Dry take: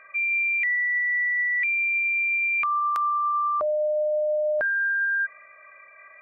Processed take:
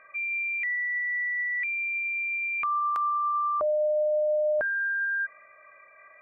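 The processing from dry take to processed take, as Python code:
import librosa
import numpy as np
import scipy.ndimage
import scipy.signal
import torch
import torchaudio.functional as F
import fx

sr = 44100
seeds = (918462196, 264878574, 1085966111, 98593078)

y = fx.high_shelf(x, sr, hz=2100.0, db=-10.5)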